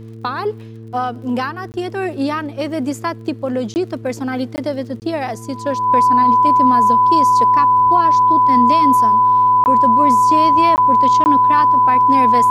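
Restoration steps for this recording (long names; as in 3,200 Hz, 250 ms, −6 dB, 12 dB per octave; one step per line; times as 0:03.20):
click removal
hum removal 112.1 Hz, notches 4
notch filter 1,000 Hz, Q 30
repair the gap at 0:01.72/0:03.74/0:04.56/0:05.00/0:09.64/0:10.76/0:11.24, 19 ms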